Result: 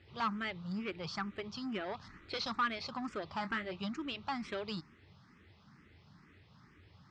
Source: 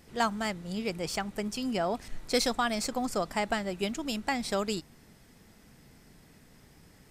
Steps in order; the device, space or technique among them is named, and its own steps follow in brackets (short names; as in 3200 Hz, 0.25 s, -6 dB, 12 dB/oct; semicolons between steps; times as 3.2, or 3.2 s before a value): 3.37–3.81 doubler 26 ms -10.5 dB; barber-pole phaser into a guitar amplifier (endless phaser +2.2 Hz; soft clip -29 dBFS, distortion -11 dB; speaker cabinet 80–4400 Hz, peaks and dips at 89 Hz +9 dB, 250 Hz -5 dB, 490 Hz -8 dB, 690 Hz -8 dB, 1200 Hz +7 dB)